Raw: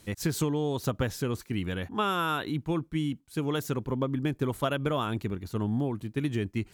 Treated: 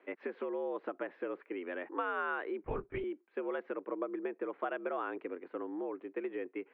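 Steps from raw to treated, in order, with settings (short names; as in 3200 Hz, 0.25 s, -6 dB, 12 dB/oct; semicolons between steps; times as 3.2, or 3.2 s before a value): compressor, threshold -29 dBFS, peak gain reduction 7 dB; mistuned SSB +72 Hz 250–2300 Hz; 2.64–3.04 LPC vocoder at 8 kHz whisper; gain -1.5 dB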